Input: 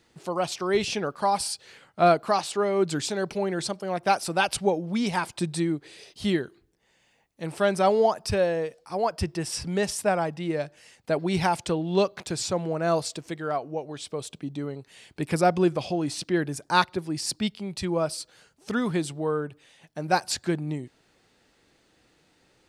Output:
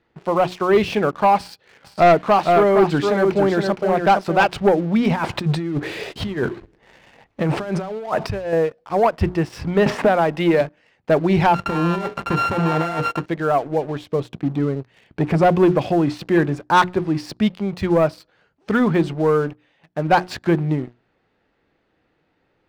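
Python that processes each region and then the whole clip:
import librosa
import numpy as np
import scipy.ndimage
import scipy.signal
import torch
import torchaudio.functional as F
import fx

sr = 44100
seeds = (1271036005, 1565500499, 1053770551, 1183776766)

y = fx.chain(x, sr, fx.highpass(hz=67.0, slope=12),
    fx.echo_single(ms=464, db=-6.0), at=(1.38, 4.53))
y = fx.chain(y, sr, fx.law_mismatch(coded='mu'),
    fx.over_compress(threshold_db=-33.0, ratio=-1.0), at=(5.1, 8.53))
y = fx.chain(y, sr, fx.highpass(hz=190.0, slope=6),
    fx.band_squash(depth_pct=100), at=(9.86, 10.61))
y = fx.chain(y, sr, fx.sample_sort(block=32),
    fx.hum_notches(base_hz=60, count=8),
    fx.over_compress(threshold_db=-30.0, ratio=-1.0), at=(11.54, 13.26))
y = fx.chain(y, sr, fx.low_shelf(hz=320.0, db=4.0),
    fx.transformer_sat(knee_hz=660.0), at=(13.78, 15.56))
y = scipy.signal.sosfilt(scipy.signal.butter(2, 2200.0, 'lowpass', fs=sr, output='sos'), y)
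y = fx.hum_notches(y, sr, base_hz=60, count=6)
y = fx.leveller(y, sr, passes=2)
y = F.gain(torch.from_numpy(y), 3.0).numpy()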